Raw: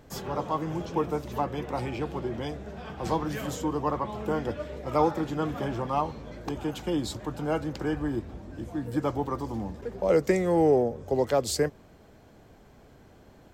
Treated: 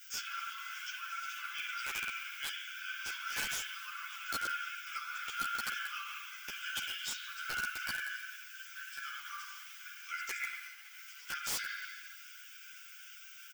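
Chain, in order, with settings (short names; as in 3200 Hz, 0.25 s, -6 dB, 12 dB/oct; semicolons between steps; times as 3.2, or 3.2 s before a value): in parallel at -3.5 dB: requantised 8-bit, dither triangular; on the sum: spring tank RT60 1.4 s, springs 42/53 ms, chirp 30 ms, DRR 0 dB; limiter -14 dBFS, peak gain reduction 11 dB; fixed phaser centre 2800 Hz, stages 8; comb 5.9 ms, depth 46%; modulation noise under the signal 33 dB; rippled Chebyshev high-pass 1400 Hz, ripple 6 dB; bell 7300 Hz -11.5 dB 1.6 oct; wrapped overs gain 38 dB; ensemble effect; gain +12.5 dB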